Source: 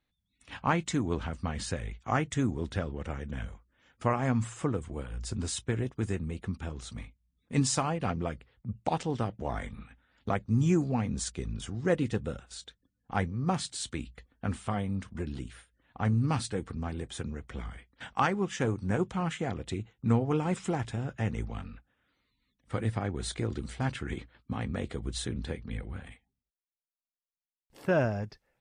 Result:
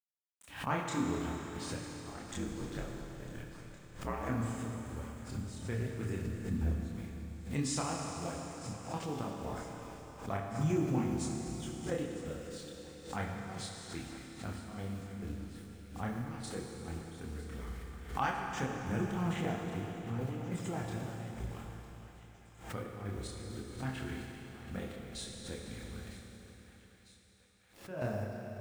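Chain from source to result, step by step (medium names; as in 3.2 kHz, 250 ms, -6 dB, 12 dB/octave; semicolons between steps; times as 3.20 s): 1.89–4.29 s: ring modulator 52 Hz; 6.27–6.71 s: tilt shelf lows +9 dB, about 1.1 kHz; bit crusher 9-bit; trance gate "x..x..xxxxxx..x" 136 bpm -12 dB; chorus voices 4, 0.58 Hz, delay 28 ms, depth 5 ms; thinning echo 952 ms, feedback 70%, high-pass 750 Hz, level -16 dB; Schroeder reverb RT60 3.8 s, combs from 27 ms, DRR 1 dB; swell ahead of each attack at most 110 dB/s; trim -4.5 dB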